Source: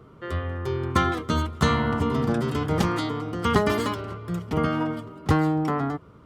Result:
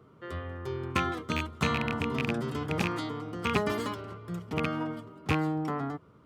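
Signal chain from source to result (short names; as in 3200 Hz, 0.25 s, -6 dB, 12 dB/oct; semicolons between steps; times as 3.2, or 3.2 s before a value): rattling part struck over -21 dBFS, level -10 dBFS; HPF 85 Hz; gain -7 dB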